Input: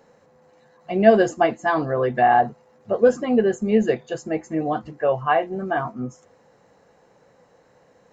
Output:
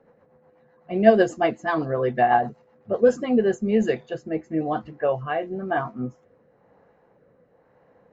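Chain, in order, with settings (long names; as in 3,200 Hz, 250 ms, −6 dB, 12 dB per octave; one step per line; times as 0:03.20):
low-pass that shuts in the quiet parts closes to 1,800 Hz, open at −14 dBFS
rotating-speaker cabinet horn 8 Hz, later 1 Hz, at 0:02.91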